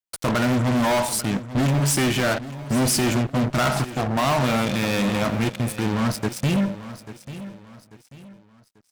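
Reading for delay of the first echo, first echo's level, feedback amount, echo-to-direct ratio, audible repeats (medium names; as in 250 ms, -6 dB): 841 ms, -14.5 dB, 36%, -14.0 dB, 3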